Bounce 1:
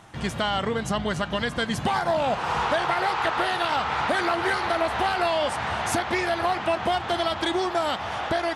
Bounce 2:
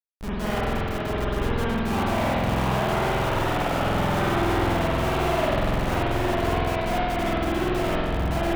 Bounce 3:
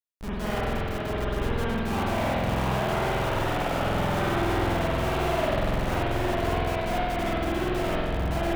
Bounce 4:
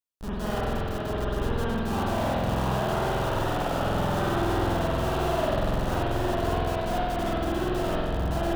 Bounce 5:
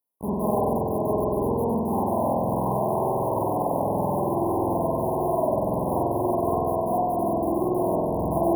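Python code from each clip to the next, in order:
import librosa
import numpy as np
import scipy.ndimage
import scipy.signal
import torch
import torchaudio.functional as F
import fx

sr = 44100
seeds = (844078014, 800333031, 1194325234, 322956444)

y1 = fx.schmitt(x, sr, flips_db=-23.0)
y1 = fx.rev_spring(y1, sr, rt60_s=2.0, pass_ms=(47,), chirp_ms=80, drr_db=-9.0)
y1 = y1 * librosa.db_to_amplitude(-7.0)
y2 = y1 + 10.0 ** (-18.0 / 20.0) * np.pad(y1, (int(96 * sr / 1000.0), 0))[:len(y1)]
y2 = y2 * librosa.db_to_amplitude(-2.5)
y3 = fx.peak_eq(y2, sr, hz=2200.0, db=-10.0, octaves=0.41)
y4 = scipy.signal.sosfilt(scipy.signal.bessel(2, 180.0, 'highpass', norm='mag', fs=sr, output='sos'), y3)
y4 = fx.rider(y4, sr, range_db=5, speed_s=0.5)
y4 = fx.brickwall_bandstop(y4, sr, low_hz=1100.0, high_hz=9500.0)
y4 = y4 * librosa.db_to_amplitude(5.0)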